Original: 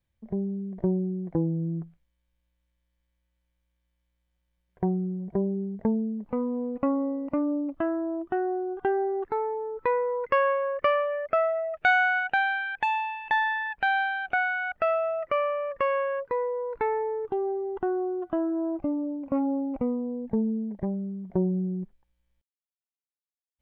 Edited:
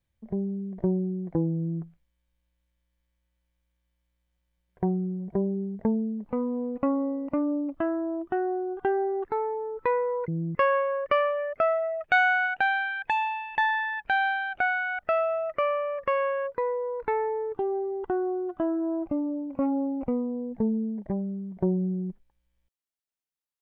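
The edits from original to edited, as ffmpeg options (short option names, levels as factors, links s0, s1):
-filter_complex "[0:a]asplit=3[s0][s1][s2];[s0]atrim=end=10.282[s3];[s1]atrim=start=1.548:end=1.822[s4];[s2]atrim=start=10.278[s5];[s3][s4]acrossfade=d=0.004:c1=hsin:c2=hsin[s6];[s6][s5]acrossfade=d=0.004:c1=hsin:c2=hsin"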